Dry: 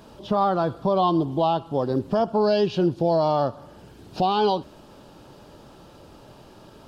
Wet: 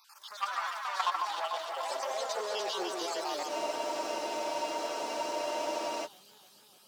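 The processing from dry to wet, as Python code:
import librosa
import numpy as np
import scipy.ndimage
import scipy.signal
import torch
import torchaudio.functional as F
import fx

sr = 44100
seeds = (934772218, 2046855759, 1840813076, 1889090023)

y = fx.spec_dropout(x, sr, seeds[0], share_pct=38)
y = 10.0 ** (-19.5 / 20.0) * np.tanh(y / 10.0 ** (-19.5 / 20.0))
y = np.diff(y, prepend=0.0)
y = fx.echo_pitch(y, sr, ms=150, semitones=4, count=2, db_per_echo=-3.0)
y = fx.filter_sweep_highpass(y, sr, from_hz=1100.0, to_hz=150.0, start_s=0.83, end_s=4.8, q=2.7)
y = fx.level_steps(y, sr, step_db=9)
y = fx.echo_alternate(y, sr, ms=148, hz=2200.0, feedback_pct=80, wet_db=-2.5)
y = fx.spec_freeze(y, sr, seeds[1], at_s=3.5, hold_s=2.56)
y = y * 10.0 ** (8.5 / 20.0)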